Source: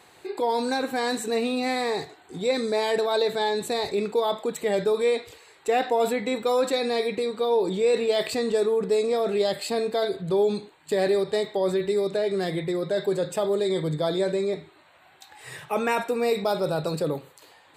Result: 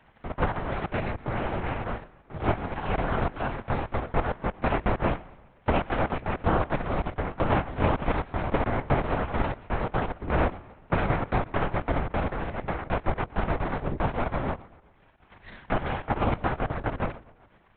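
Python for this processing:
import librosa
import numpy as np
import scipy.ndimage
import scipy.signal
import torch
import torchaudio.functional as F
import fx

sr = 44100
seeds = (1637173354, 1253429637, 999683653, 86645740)

p1 = fx.cycle_switch(x, sr, every=2, mode='muted')
p2 = scipy.signal.sosfilt(scipy.signal.butter(4, 2200.0, 'lowpass', fs=sr, output='sos'), p1)
p3 = np.maximum(p2, 0.0)
p4 = fx.transient(p3, sr, attack_db=5, sustain_db=-12)
p5 = p4 + fx.echo_feedback(p4, sr, ms=128, feedback_pct=57, wet_db=-22, dry=0)
p6 = fx.lpc_vocoder(p5, sr, seeds[0], excitation='whisper', order=8)
y = p6 * 10.0 ** (2.0 / 20.0)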